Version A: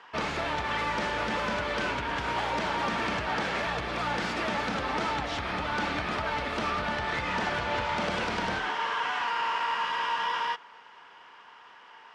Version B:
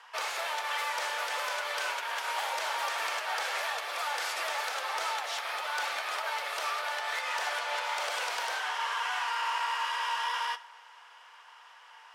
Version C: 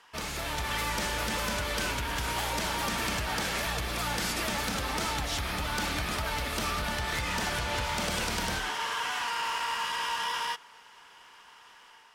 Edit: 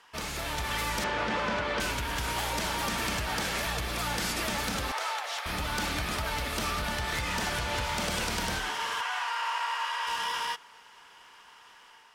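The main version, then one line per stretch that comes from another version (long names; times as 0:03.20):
C
0:01.04–0:01.80: punch in from A
0:04.92–0:05.46: punch in from B
0:09.01–0:10.07: punch in from B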